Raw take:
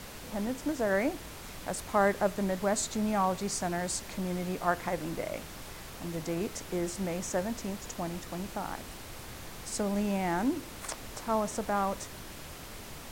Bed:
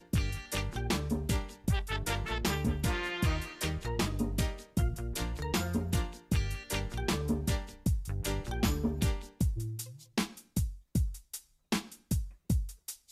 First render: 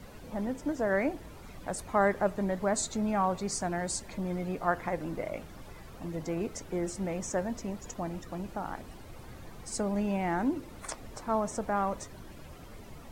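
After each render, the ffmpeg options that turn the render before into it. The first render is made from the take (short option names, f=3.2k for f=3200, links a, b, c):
-af "afftdn=nr=12:nf=-45"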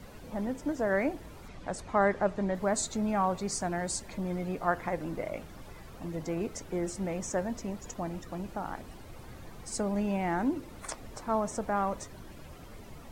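-filter_complex "[0:a]asettb=1/sr,asplit=3[a][b][c];[a]atrim=end=1.484[d];[b]atrim=start=1.48:end=2.55,asetpts=PTS-STARTPTS,afade=t=in:d=0.004:c=qsin,afade=t=out:st=1.066:d=0.004:c=qsin,lowpass=6.9k[e];[c]atrim=start=2.546[f];[d][e]acrossfade=d=0.004:c1=hsin:c2=qsin[g];[g][f]acrossfade=d=0.004:c1=qsin:c2=hsin"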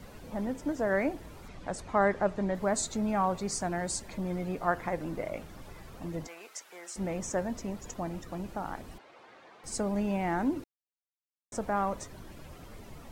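-filter_complex "[0:a]asettb=1/sr,asplit=3[a][b][c];[a]atrim=end=6.274[d];[b]atrim=start=6.27:end=6.96,asetpts=PTS-STARTPTS,afade=t=in:d=0.004:c=qsin,afade=t=out:st=0.686:d=0.004:c=qsin,highpass=1.1k[e];[c]atrim=start=6.956[f];[d][e]acrossfade=d=0.004:c1=hsin:c2=qsin[g];[g][f]acrossfade=d=0.004:c1=qsin:c2=hsin,asettb=1/sr,asplit=3[h][i][j];[h]atrim=end=8.984[k];[i]atrim=start=8.98:end=9.64,asetpts=PTS-STARTPTS,afade=t=in:d=0.004:c=qsin,afade=t=out:st=0.656:d=0.004:c=qsin,highpass=510,lowpass=3.5k[l];[j]atrim=start=9.636[m];[k][l]acrossfade=d=0.004:c1=hsin:c2=qsin[n];[n][m]acrossfade=d=0.004:c1=qsin:c2=hsin,asplit=3[o][p][q];[o]atrim=end=10.64,asetpts=PTS-STARTPTS,afade=t=out:st=10.636:d=0.004:c=hsin[r];[p]atrim=start=10.64:end=11.52,asetpts=PTS-STARTPTS,volume=0[s];[q]atrim=start=11.52,asetpts=PTS-STARTPTS,afade=t=in:d=0.004:c=hsin[t];[r][s][t]concat=n=3:v=0:a=1"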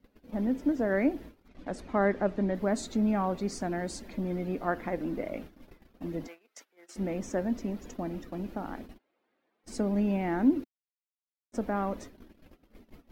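-af "agate=range=-22dB:threshold=-44dB:ratio=16:detection=peak,equalizer=f=125:t=o:w=1:g=-9,equalizer=f=250:t=o:w=1:g=9,equalizer=f=1k:t=o:w=1:g=-5,equalizer=f=8k:t=o:w=1:g=-11"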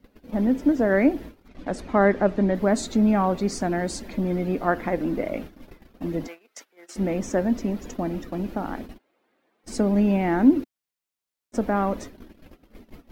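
-af "volume=7.5dB"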